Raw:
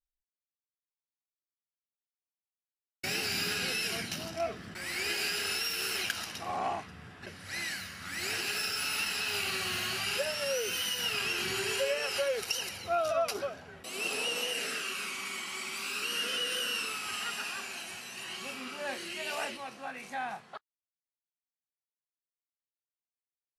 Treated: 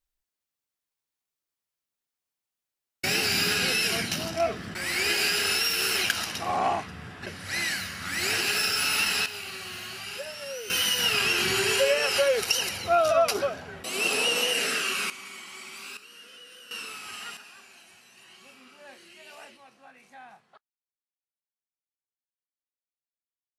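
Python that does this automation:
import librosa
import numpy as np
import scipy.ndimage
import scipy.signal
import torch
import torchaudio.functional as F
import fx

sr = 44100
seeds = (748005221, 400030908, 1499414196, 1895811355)

y = fx.gain(x, sr, db=fx.steps((0.0, 7.5), (9.26, -4.5), (10.7, 8.0), (15.1, -4.0), (15.97, -15.5), (16.71, -3.0), (17.37, -11.5)))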